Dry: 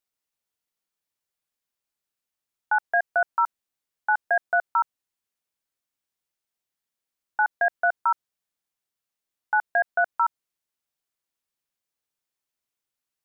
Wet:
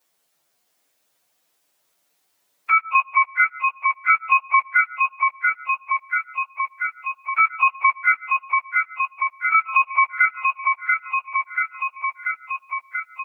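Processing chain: pitch shift by moving bins +7.5 st; low shelf 120 Hz -4 dB; in parallel at +2 dB: level quantiser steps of 23 dB; on the sum: HPF 89 Hz 6 dB/oct; bell 630 Hz +5 dB 1.1 oct; feedback echo 0.686 s, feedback 52%, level -7 dB; on a send at -23 dB: reverb RT60 0.35 s, pre-delay 90 ms; on the sum: three-band squash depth 70%; gain +1.5 dB

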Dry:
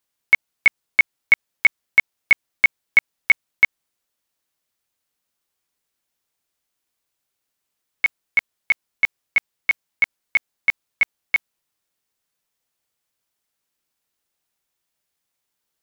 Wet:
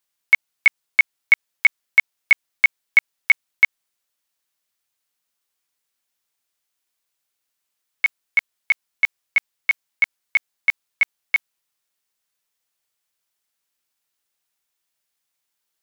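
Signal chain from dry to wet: tilt shelf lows -4 dB, about 700 Hz; gain -3 dB

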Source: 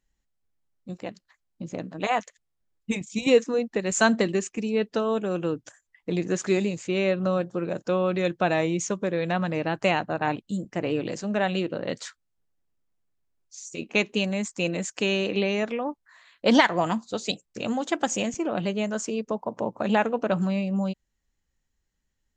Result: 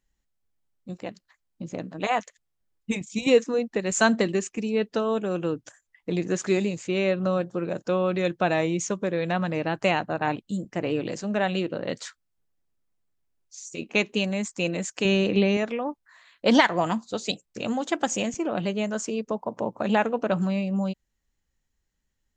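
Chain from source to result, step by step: 15.05–15.57 low shelf 210 Hz +12 dB

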